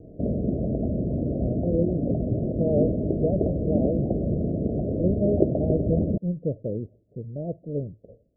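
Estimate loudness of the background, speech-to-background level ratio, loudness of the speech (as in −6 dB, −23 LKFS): −26.5 LKFS, −3.0 dB, −29.5 LKFS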